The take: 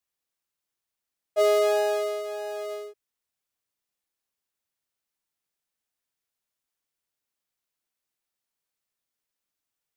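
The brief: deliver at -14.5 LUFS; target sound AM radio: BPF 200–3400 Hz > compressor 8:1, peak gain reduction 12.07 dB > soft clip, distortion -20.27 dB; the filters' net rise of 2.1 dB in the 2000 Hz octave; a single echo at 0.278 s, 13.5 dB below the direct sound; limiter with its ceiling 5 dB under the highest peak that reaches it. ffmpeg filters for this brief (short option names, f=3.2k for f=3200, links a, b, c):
-af "equalizer=f=2k:t=o:g=3,alimiter=limit=-17.5dB:level=0:latency=1,highpass=200,lowpass=3.4k,aecho=1:1:278:0.211,acompressor=threshold=-33dB:ratio=8,asoftclip=threshold=-30dB,volume=24.5dB"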